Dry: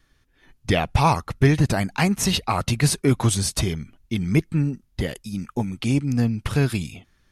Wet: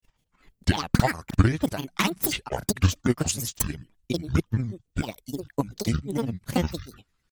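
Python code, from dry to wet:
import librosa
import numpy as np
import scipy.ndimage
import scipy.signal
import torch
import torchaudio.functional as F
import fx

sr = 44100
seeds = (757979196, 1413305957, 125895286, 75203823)

y = fx.high_shelf(x, sr, hz=6000.0, db=8.0)
y = fx.granulator(y, sr, seeds[0], grain_ms=100.0, per_s=20.0, spray_ms=36.0, spread_st=12)
y = fx.transient(y, sr, attack_db=10, sustain_db=-2)
y = y * librosa.db_to_amplitude(-8.5)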